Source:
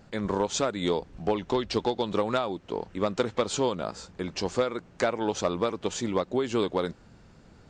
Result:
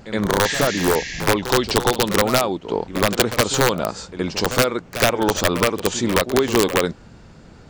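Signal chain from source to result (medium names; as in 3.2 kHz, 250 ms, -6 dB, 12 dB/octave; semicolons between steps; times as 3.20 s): integer overflow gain 16.5 dB; reverse echo 70 ms -12 dB; spectral replace 0.47–1.20 s, 1.6–7.4 kHz both; trim +9 dB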